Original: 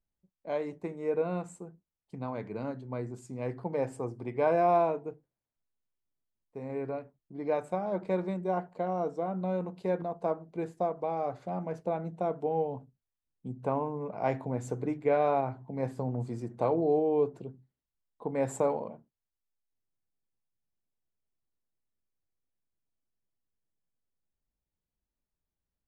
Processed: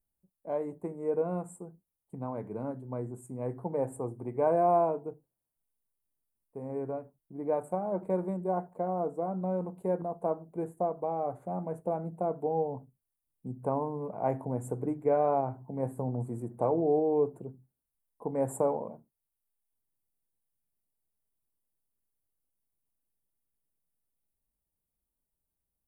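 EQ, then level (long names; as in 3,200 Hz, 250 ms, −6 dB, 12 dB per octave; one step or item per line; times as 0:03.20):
drawn EQ curve 920 Hz 0 dB, 5,200 Hz −25 dB, 9,100 Hz +9 dB
0.0 dB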